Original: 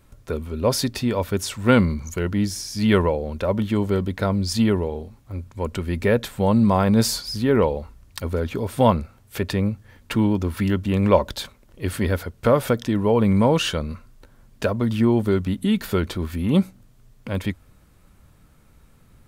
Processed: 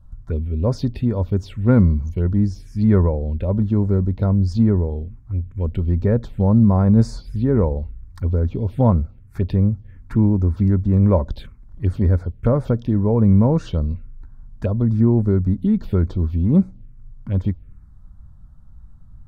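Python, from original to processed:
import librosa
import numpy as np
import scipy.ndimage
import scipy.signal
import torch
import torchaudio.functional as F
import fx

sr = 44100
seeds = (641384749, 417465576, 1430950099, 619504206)

y = fx.riaa(x, sr, side='playback')
y = fx.env_phaser(y, sr, low_hz=360.0, high_hz=3000.0, full_db=-9.5)
y = y * 10.0 ** (-5.0 / 20.0)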